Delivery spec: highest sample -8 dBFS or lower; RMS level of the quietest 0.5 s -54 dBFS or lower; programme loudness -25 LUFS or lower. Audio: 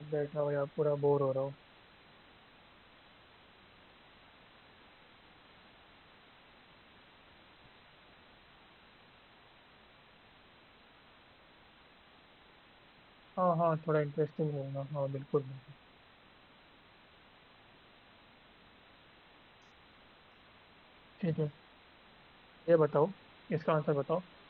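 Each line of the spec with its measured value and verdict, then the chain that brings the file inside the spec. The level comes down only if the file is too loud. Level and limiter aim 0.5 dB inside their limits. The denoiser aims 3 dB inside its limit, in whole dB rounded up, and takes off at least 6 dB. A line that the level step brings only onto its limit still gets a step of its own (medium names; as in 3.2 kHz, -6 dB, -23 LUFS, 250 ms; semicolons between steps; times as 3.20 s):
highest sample -15.5 dBFS: pass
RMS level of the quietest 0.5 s -61 dBFS: pass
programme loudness -33.5 LUFS: pass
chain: none needed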